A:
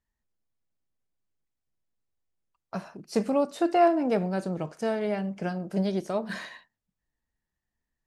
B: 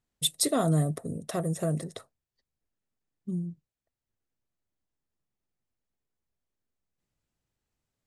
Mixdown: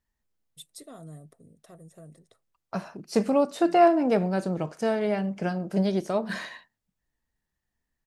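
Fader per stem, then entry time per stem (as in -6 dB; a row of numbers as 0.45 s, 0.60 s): +2.5 dB, -19.5 dB; 0.00 s, 0.35 s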